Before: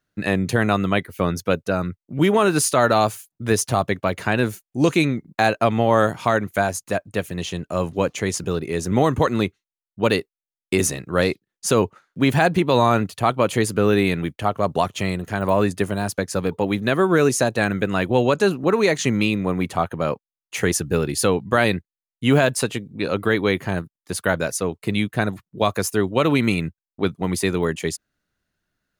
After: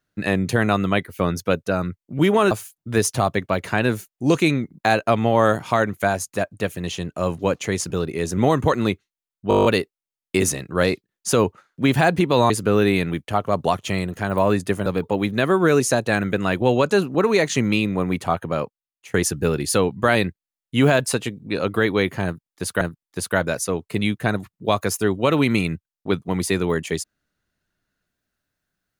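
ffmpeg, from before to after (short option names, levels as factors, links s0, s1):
-filter_complex "[0:a]asplit=14[s0][s1][s2][s3][s4][s5][s6][s7][s8][s9][s10][s11][s12][s13];[s0]atrim=end=2.512[s14];[s1]atrim=start=3.048:end=10.052[s15];[s2]atrim=start=10.028:end=10.052[s16];[s3]atrim=start=10.028:end=10.052[s17];[s4]atrim=start=10.028:end=10.052[s18];[s5]atrim=start=10.028:end=10.052[s19];[s6]atrim=start=10.028:end=10.052[s20];[s7]atrim=start=10.028:end=10.052[s21];[s8]atrim=start=10.028:end=10.052[s22];[s9]atrim=start=10.028:end=12.882[s23];[s10]atrim=start=13.608:end=15.972[s24];[s11]atrim=start=16.348:end=20.63,asetpts=PTS-STARTPTS,afade=t=out:st=3.632:d=0.65:silence=0.0891251[s25];[s12]atrim=start=20.63:end=24.302,asetpts=PTS-STARTPTS,afade=t=in:d=0.004:c=hsin:silence=0.0891251[s26];[s13]atrim=start=23.738[s27];[s14][s15]acrossfade=d=0.004:c1=hsin:c2=hsin[s28];[s28][s16]acrossfade=d=0.004:c1=hsin:c2=hsin[s29];[s29][s17]acrossfade=d=0.004:c1=hsin:c2=hsin[s30];[s30][s18]acrossfade=d=0.004:c1=hsin:c2=hsin[s31];[s31][s19]acrossfade=d=0.004:c1=hsin:c2=hsin[s32];[s32][s20]acrossfade=d=0.004:c1=hsin:c2=hsin[s33];[s33][s21]acrossfade=d=0.004:c1=hsin:c2=hsin[s34];[s34][s22]acrossfade=d=0.004:c1=hsin:c2=hsin[s35];[s35][s23]acrossfade=d=0.004:c1=hsin:c2=hsin[s36];[s36][s24]acrossfade=d=0.004:c1=hsin:c2=hsin[s37];[s25][s26]concat=n=2:v=0:a=1[s38];[s37][s38]acrossfade=d=0.004:c1=hsin:c2=hsin[s39];[s39][s27]acrossfade=d=0.004:c1=hsin:c2=hsin"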